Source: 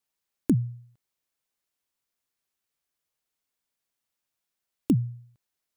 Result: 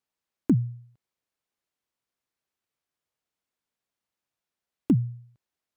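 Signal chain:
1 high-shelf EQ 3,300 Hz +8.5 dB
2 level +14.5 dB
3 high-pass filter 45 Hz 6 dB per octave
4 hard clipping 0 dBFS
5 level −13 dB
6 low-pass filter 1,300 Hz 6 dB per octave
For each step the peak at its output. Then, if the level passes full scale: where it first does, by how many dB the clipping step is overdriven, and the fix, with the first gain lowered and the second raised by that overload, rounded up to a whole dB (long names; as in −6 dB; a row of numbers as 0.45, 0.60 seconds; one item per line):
−8.5, +6.0, +5.5, 0.0, −13.0, −13.0 dBFS
step 2, 5.5 dB
step 2 +8.5 dB, step 5 −7 dB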